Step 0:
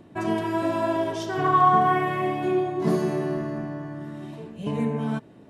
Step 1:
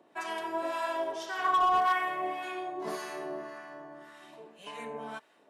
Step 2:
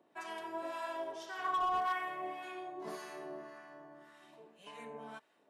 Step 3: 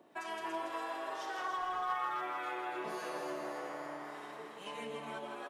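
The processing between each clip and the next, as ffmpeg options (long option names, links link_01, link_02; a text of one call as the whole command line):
ffmpeg -i in.wav -filter_complex "[0:a]highpass=670,asoftclip=type=hard:threshold=-17dB,acrossover=split=950[link_01][link_02];[link_01]aeval=exprs='val(0)*(1-0.7/2+0.7/2*cos(2*PI*1.8*n/s))':channel_layout=same[link_03];[link_02]aeval=exprs='val(0)*(1-0.7/2-0.7/2*cos(2*PI*1.8*n/s))':channel_layout=same[link_04];[link_03][link_04]amix=inputs=2:normalize=0" out.wav
ffmpeg -i in.wav -af "lowshelf=frequency=190:gain=3.5,volume=-8dB" out.wav
ffmpeg -i in.wav -filter_complex "[0:a]asplit=2[link_01][link_02];[link_02]asplit=6[link_03][link_04][link_05][link_06][link_07][link_08];[link_03]adelay=283,afreqshift=130,volume=-5dB[link_09];[link_04]adelay=566,afreqshift=260,volume=-11.4dB[link_10];[link_05]adelay=849,afreqshift=390,volume=-17.8dB[link_11];[link_06]adelay=1132,afreqshift=520,volume=-24.1dB[link_12];[link_07]adelay=1415,afreqshift=650,volume=-30.5dB[link_13];[link_08]adelay=1698,afreqshift=780,volume=-36.9dB[link_14];[link_09][link_10][link_11][link_12][link_13][link_14]amix=inputs=6:normalize=0[link_15];[link_01][link_15]amix=inputs=2:normalize=0,acompressor=threshold=-47dB:ratio=3,asplit=2[link_16][link_17];[link_17]aecho=0:1:163.3|288.6:0.501|0.251[link_18];[link_16][link_18]amix=inputs=2:normalize=0,volume=7dB" out.wav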